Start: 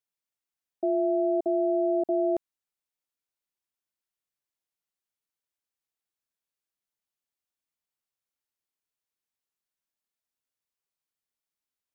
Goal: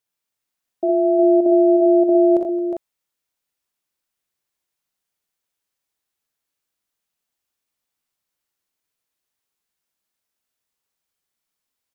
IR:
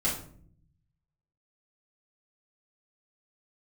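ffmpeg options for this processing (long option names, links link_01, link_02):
-af "aecho=1:1:44|60|82|220|360|400:0.299|0.531|0.266|0.119|0.447|0.447,volume=6.5dB"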